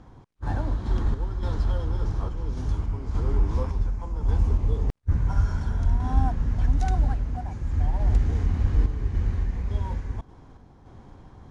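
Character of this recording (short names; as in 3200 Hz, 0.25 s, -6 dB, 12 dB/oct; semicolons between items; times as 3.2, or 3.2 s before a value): random-step tremolo; IMA ADPCM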